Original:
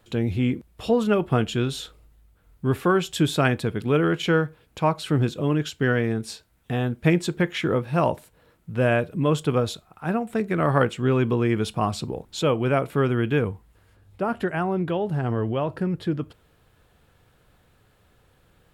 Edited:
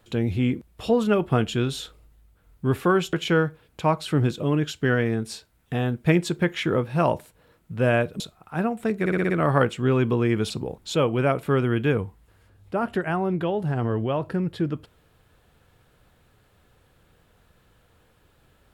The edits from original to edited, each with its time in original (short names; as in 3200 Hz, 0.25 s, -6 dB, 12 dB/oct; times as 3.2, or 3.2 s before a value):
3.13–4.11 cut
9.18–9.7 cut
10.5 stutter 0.06 s, 6 plays
11.7–11.97 cut